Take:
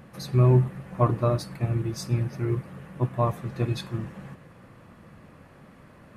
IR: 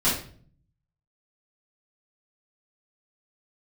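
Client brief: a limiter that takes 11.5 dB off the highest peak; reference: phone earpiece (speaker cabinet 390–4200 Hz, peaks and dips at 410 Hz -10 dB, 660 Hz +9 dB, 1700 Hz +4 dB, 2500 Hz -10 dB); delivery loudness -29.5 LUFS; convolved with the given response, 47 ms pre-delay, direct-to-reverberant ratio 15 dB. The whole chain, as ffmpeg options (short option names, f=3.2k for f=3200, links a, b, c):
-filter_complex "[0:a]alimiter=limit=-20dB:level=0:latency=1,asplit=2[a][b];[1:a]atrim=start_sample=2205,adelay=47[c];[b][c]afir=irnorm=-1:irlink=0,volume=-28.5dB[d];[a][d]amix=inputs=2:normalize=0,highpass=390,equalizer=f=410:t=q:w=4:g=-10,equalizer=f=660:t=q:w=4:g=9,equalizer=f=1.7k:t=q:w=4:g=4,equalizer=f=2.5k:t=q:w=4:g=-10,lowpass=f=4.2k:w=0.5412,lowpass=f=4.2k:w=1.3066,volume=7.5dB"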